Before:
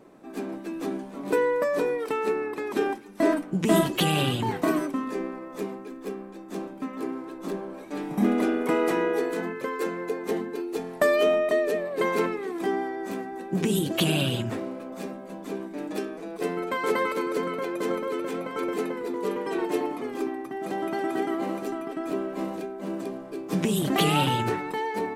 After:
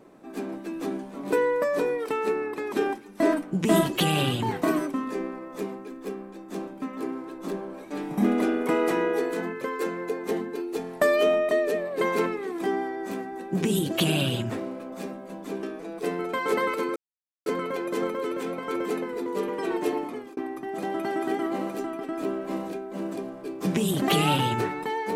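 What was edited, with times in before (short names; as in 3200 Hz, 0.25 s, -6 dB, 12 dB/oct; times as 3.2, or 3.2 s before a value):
15.63–16.01 cut
17.34 insert silence 0.50 s
19.84–20.25 fade out equal-power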